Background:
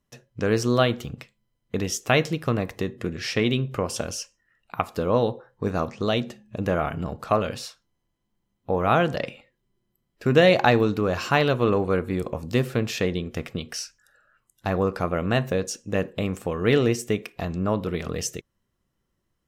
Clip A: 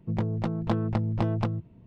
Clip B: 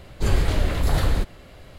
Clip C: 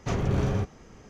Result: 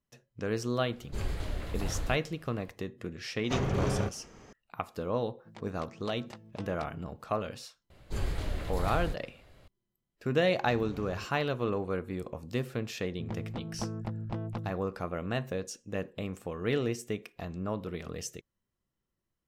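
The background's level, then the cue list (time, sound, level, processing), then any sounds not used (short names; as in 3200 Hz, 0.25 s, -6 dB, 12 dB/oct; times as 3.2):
background -10 dB
0.92 add B -14 dB
3.44 add C -0.5 dB + low shelf 200 Hz -6 dB
5.38 add A -14 dB + tilt +4.5 dB/oct
7.9 add B -12.5 dB
10.6 add C -17.5 dB
13.12 add A -9.5 dB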